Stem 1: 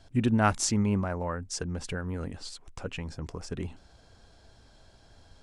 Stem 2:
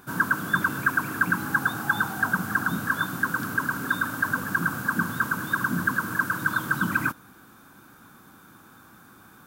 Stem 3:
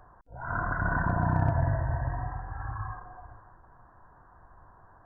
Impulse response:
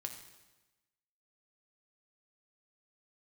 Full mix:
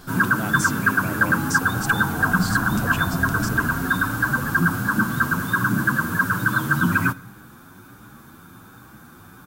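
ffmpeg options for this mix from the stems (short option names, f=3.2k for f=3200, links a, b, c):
-filter_complex "[0:a]aemphasis=mode=production:type=50fm,acompressor=threshold=-34dB:ratio=6,volume=1dB[a];[1:a]lowshelf=f=170:g=9.5,asplit=2[b][c];[c]adelay=8.9,afreqshift=1.3[d];[b][d]amix=inputs=2:normalize=1,volume=0.5dB,asplit=2[e][f];[f]volume=-11dB[g];[2:a]adelay=1650,volume=-9dB[h];[3:a]atrim=start_sample=2205[i];[g][i]afir=irnorm=-1:irlink=0[j];[a][e][h][j]amix=inputs=4:normalize=0,acontrast=25"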